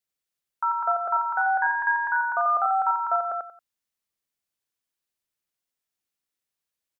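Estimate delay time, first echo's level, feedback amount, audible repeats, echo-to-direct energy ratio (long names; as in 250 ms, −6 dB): 91 ms, −4.0 dB, 25%, 3, −3.5 dB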